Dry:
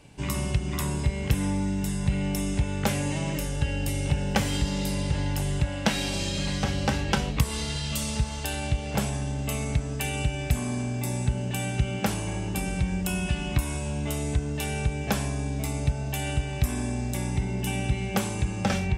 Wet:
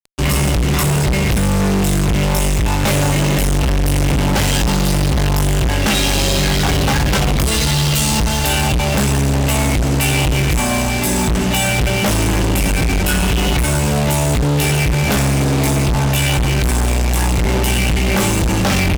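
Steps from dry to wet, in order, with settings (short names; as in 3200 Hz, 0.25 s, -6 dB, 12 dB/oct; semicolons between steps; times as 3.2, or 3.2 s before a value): chorus voices 6, 0.31 Hz, delay 20 ms, depth 1.9 ms; doubler 15 ms -7.5 dB; fuzz box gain 43 dB, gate -43 dBFS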